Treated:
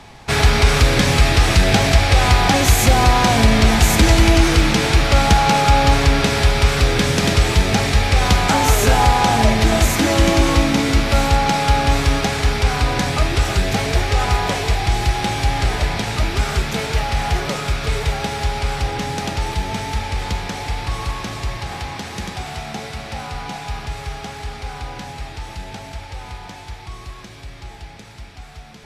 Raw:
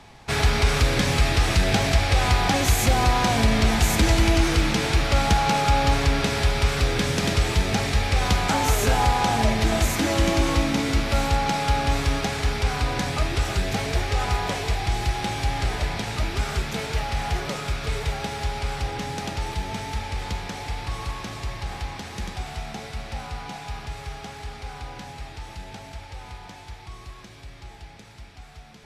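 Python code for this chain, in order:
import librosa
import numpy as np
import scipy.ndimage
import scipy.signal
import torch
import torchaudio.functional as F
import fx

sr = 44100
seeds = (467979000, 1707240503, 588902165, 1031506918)

y = fx.highpass(x, sr, hz=78.0, slope=12, at=(21.58, 23.35))
y = y * librosa.db_to_amplitude(6.5)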